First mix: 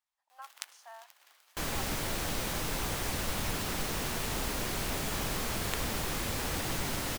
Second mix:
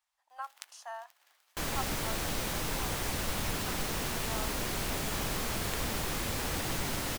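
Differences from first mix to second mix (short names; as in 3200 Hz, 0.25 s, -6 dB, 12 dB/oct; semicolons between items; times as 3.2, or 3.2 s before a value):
speech +7.5 dB; first sound -5.5 dB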